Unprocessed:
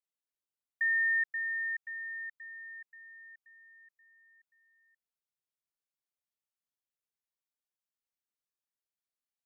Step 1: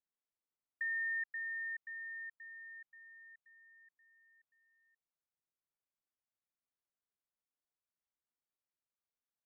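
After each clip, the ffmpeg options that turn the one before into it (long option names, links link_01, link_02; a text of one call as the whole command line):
ffmpeg -i in.wav -af "lowpass=1700,acompressor=threshold=-40dB:ratio=1.5,volume=-1.5dB" out.wav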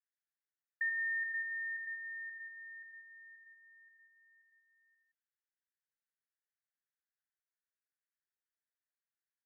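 ffmpeg -i in.wav -af "asuperpass=centerf=1700:order=4:qfactor=3.3,aecho=1:1:81.63|169.1:0.316|0.355,volume=3.5dB" out.wav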